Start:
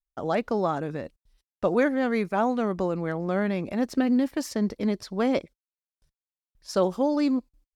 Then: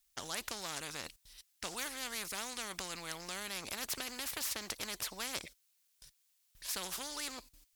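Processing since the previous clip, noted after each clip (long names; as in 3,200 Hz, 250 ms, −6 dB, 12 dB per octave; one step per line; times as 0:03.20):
tilt shelving filter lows −10 dB, about 1,500 Hz
every bin compressed towards the loudest bin 4 to 1
level −4.5 dB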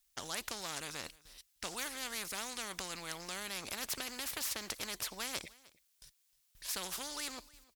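single-tap delay 308 ms −22.5 dB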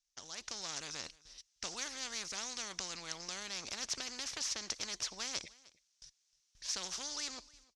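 automatic gain control gain up to 8 dB
transistor ladder low-pass 6,600 Hz, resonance 60%
level −1 dB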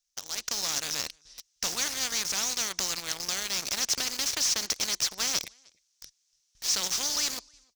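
high-shelf EQ 4,400 Hz +7 dB
in parallel at −3 dB: log-companded quantiser 2 bits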